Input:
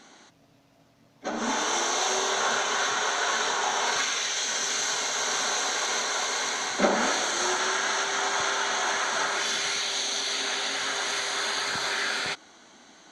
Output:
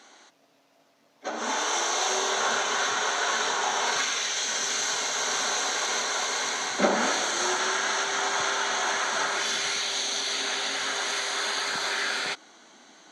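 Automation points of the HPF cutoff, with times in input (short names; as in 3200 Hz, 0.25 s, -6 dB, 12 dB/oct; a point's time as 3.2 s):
1.88 s 360 Hz
2.76 s 86 Hz
10.7 s 86 Hz
11.18 s 190 Hz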